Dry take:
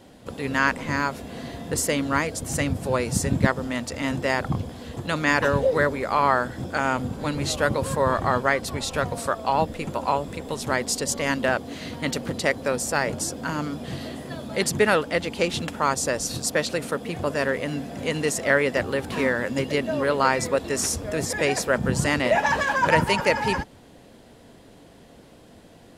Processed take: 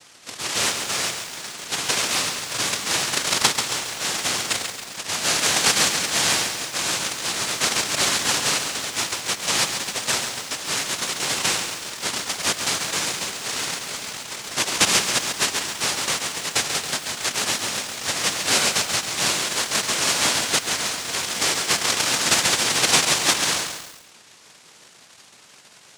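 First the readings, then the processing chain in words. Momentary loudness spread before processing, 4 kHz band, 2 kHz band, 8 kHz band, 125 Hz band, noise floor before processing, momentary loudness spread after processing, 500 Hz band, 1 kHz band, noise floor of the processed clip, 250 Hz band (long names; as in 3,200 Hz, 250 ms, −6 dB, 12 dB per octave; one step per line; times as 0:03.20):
9 LU, +12.5 dB, +0.5 dB, +10.5 dB, −9.5 dB, −50 dBFS, 9 LU, −8.5 dB, −3.0 dB, −50 dBFS, −7.5 dB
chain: cochlear-implant simulation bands 1
feedback echo at a low word length 137 ms, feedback 55%, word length 6 bits, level −6 dB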